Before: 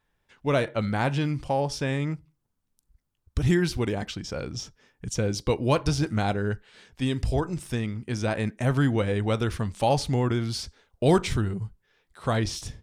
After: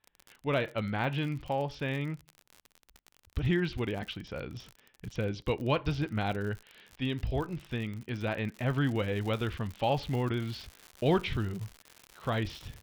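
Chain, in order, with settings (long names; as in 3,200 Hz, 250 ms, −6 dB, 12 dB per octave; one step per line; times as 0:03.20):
transistor ladder low-pass 3,700 Hz, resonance 40%
surface crackle 52 per second −39 dBFS, from 0:08.48 180 per second
level +2 dB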